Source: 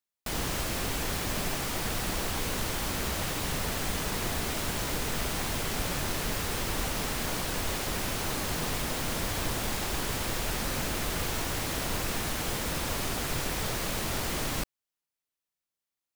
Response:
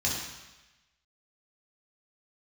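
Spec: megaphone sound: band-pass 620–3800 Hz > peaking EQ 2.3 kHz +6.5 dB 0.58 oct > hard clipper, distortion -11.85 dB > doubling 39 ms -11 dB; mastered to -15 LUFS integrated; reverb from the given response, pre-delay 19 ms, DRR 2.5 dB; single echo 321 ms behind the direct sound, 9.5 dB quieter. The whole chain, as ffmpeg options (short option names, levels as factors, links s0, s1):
-filter_complex "[0:a]aecho=1:1:321:0.335,asplit=2[s0][s1];[1:a]atrim=start_sample=2205,adelay=19[s2];[s1][s2]afir=irnorm=-1:irlink=0,volume=0.282[s3];[s0][s3]amix=inputs=2:normalize=0,highpass=620,lowpass=3800,equalizer=f=2300:t=o:w=0.58:g=6.5,asoftclip=type=hard:threshold=0.0282,asplit=2[s4][s5];[s5]adelay=39,volume=0.282[s6];[s4][s6]amix=inputs=2:normalize=0,volume=7.5"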